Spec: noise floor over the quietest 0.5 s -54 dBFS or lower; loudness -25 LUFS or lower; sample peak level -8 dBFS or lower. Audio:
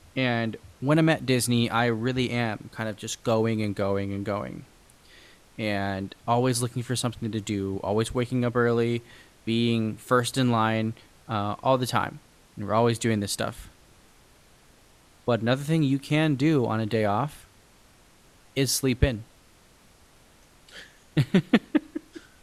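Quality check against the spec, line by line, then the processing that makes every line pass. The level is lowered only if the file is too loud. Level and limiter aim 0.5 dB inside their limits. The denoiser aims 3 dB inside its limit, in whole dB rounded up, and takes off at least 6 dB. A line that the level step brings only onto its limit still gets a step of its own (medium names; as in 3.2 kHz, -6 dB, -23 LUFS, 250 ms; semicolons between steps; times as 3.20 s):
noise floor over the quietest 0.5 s -56 dBFS: pass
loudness -26.0 LUFS: pass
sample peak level -6.0 dBFS: fail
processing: peak limiter -8.5 dBFS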